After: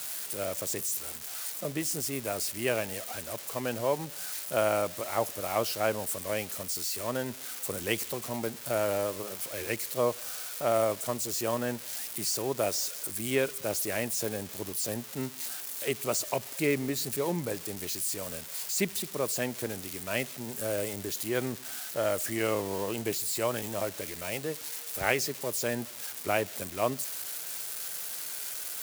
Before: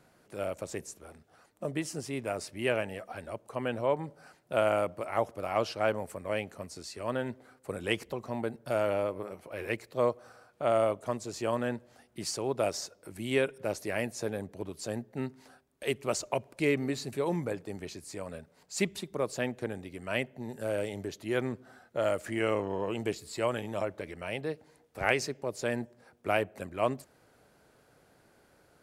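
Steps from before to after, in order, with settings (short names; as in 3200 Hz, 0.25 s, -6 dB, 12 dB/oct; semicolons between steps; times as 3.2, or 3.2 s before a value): switching spikes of -27 dBFS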